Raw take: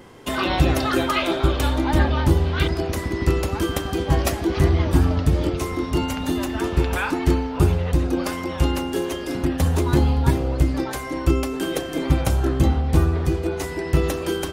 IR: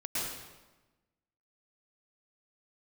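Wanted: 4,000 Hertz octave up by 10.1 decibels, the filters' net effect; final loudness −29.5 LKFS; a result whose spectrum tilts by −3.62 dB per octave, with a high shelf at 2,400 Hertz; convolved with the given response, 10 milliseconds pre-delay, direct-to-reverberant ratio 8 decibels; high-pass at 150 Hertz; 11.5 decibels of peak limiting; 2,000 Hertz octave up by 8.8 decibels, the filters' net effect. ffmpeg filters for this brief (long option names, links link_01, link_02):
-filter_complex "[0:a]highpass=150,equalizer=frequency=2000:width_type=o:gain=6.5,highshelf=frequency=2400:gain=7.5,equalizer=frequency=4000:width_type=o:gain=4,alimiter=limit=-14dB:level=0:latency=1,asplit=2[link_01][link_02];[1:a]atrim=start_sample=2205,adelay=10[link_03];[link_02][link_03]afir=irnorm=-1:irlink=0,volume=-13.5dB[link_04];[link_01][link_04]amix=inputs=2:normalize=0,volume=-6.5dB"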